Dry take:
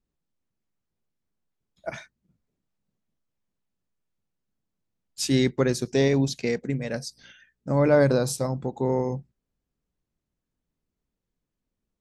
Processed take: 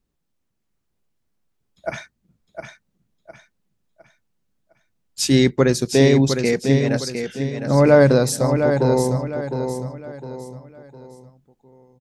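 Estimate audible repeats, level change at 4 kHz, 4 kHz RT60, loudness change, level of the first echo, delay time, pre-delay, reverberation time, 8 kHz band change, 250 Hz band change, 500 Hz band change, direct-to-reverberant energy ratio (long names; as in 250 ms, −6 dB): 4, +7.5 dB, no reverb audible, +6.5 dB, −7.0 dB, 708 ms, no reverb audible, no reverb audible, +7.5 dB, +7.5 dB, +7.5 dB, no reverb audible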